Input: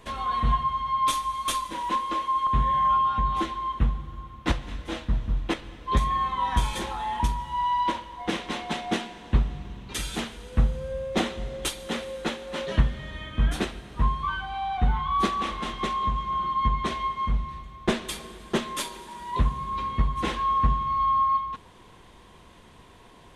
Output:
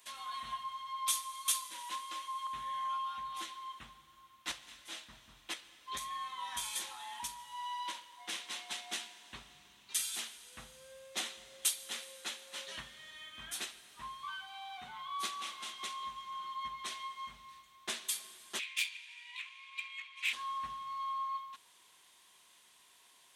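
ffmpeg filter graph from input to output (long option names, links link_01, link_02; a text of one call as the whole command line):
ffmpeg -i in.wav -filter_complex "[0:a]asettb=1/sr,asplit=3[link_01][link_02][link_03];[link_01]atrim=end=14.474[link_04];[link_02]atrim=start=14.47:end=16.01,asetpts=PTS-STARTPTS,afade=type=in:duration=0.004:curve=qsin,afade=type=out:start_time=1.536:duration=0.004:curve=qsin,highpass=96,bandreject=frequency=1800:width=17[link_05];[link_03]atrim=start=16.006[link_06];[link_04][link_05]acrossfade=duration=0.004:curve1=hsin:curve2=qsin[link_07];[link_07][link_06]acrossfade=duration=0.004:curve1=qsin:curve2=hsin,asettb=1/sr,asplit=3[link_08][link_09][link_10];[link_08]atrim=end=18.594[link_11];[link_09]atrim=start=18.59:end=20.33,asetpts=PTS-STARTPTS,afade=type=in:duration=0.004:curve=qsin,afade=type=out:start_time=1.736:duration=0.004:curve=qsin,highpass=frequency=2400:width_type=q:width=8.4,highshelf=frequency=6900:gain=-9.5,adynamicsmooth=sensitivity=2.5:basefreq=5600[link_12];[link_10]atrim=start=20.326[link_13];[link_11][link_12]acrossfade=duration=0.004:curve1=hsin:curve2=qsin[link_14];[link_14][link_13]acrossfade=duration=0.004:curve1=qsin:curve2=hsin,aderivative,bandreject=frequency=480:width=13,volume=1dB" out.wav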